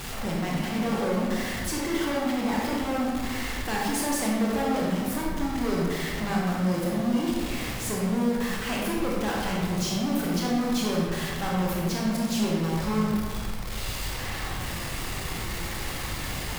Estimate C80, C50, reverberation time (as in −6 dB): 1.5 dB, −1.0 dB, 1.7 s